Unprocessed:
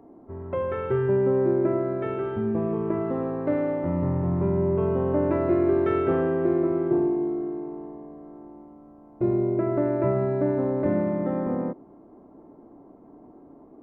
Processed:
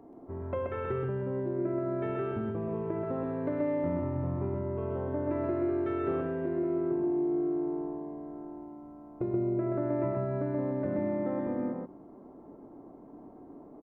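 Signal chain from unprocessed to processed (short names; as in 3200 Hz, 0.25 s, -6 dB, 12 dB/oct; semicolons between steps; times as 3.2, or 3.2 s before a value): compressor, threshold -28 dBFS, peak gain reduction 10.5 dB; echo 0.129 s -3 dB; gain -2 dB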